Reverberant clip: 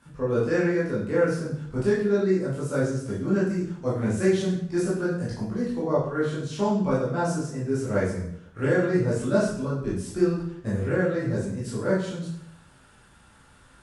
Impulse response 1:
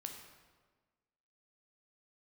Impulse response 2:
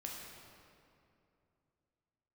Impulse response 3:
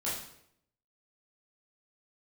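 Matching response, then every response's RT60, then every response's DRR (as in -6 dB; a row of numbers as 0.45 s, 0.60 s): 3; 1.4 s, 2.7 s, 0.70 s; 3.0 dB, -2.0 dB, -9.0 dB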